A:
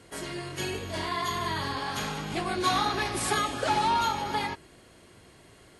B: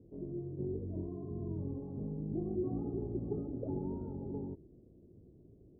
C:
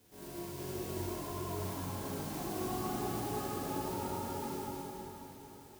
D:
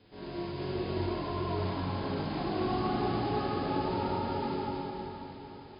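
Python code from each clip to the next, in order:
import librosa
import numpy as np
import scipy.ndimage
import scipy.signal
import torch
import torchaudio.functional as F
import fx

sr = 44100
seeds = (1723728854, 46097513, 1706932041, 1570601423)

y1 = scipy.signal.sosfilt(scipy.signal.cheby2(4, 70, 1800.0, 'lowpass', fs=sr, output='sos'), x)
y1 = y1 * 10.0 ** (-1.5 / 20.0)
y2 = fx.envelope_flatten(y1, sr, power=0.3)
y2 = y2 + 10.0 ** (-6.5 / 20.0) * np.pad(y2, (int(215 * sr / 1000.0), 0))[:len(y2)]
y2 = fx.rev_plate(y2, sr, seeds[0], rt60_s=4.2, hf_ratio=0.8, predelay_ms=0, drr_db=-8.0)
y2 = y2 * 10.0 ** (-9.0 / 20.0)
y3 = fx.brickwall_lowpass(y2, sr, high_hz=5100.0)
y3 = y3 * 10.0 ** (6.5 / 20.0)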